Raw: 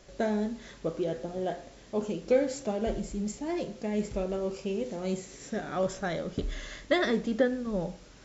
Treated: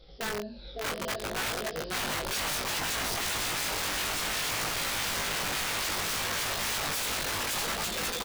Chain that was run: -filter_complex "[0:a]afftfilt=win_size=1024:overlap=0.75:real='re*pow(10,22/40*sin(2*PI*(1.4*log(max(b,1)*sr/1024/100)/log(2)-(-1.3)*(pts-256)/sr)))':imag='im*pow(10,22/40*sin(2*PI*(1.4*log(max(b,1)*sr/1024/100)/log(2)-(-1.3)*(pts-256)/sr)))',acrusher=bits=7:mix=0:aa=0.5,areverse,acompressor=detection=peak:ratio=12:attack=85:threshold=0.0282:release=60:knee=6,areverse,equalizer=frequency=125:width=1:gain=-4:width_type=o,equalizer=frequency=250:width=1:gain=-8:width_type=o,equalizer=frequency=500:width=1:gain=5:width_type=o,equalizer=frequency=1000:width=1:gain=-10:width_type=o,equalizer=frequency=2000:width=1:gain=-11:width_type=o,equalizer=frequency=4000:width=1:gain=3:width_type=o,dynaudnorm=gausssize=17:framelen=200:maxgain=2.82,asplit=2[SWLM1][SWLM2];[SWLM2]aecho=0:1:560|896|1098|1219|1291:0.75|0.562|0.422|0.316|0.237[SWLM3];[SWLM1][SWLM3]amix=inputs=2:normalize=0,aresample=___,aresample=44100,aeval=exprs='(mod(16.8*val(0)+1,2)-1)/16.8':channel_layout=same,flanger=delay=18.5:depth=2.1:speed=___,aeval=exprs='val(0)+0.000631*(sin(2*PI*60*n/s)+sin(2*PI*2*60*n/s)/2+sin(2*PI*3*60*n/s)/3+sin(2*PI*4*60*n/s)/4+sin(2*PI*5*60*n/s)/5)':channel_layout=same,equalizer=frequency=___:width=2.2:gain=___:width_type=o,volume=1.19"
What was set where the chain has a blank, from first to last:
11025, 0.62, 300, -4